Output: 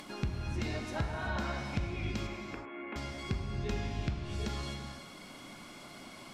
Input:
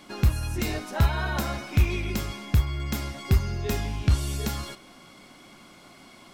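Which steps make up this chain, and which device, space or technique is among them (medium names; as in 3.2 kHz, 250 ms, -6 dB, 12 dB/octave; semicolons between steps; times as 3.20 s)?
low-pass that closes with the level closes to 1.6 kHz, closed at -17.5 dBFS; 2.27–2.96 s: elliptic band-pass 280–2400 Hz, stop band 40 dB; upward and downward compression (upward compressor, threshold -36 dBFS; compression, threshold -24 dBFS, peak gain reduction 9 dB); gated-style reverb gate 400 ms flat, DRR 3 dB; trim -6.5 dB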